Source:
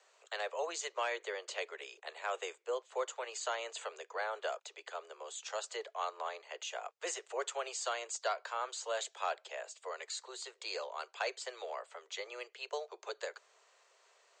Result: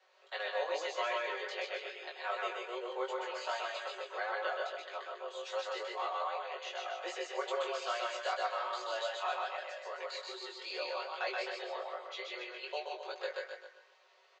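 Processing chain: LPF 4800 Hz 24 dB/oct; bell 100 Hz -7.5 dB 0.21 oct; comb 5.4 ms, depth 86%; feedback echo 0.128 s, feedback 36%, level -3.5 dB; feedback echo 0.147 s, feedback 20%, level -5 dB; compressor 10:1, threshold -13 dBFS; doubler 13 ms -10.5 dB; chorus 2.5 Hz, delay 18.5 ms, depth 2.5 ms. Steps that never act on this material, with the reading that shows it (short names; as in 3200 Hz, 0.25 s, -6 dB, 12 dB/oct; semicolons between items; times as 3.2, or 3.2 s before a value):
bell 100 Hz: input band starts at 320 Hz; compressor, threshold -13 dBFS: input peak -19.5 dBFS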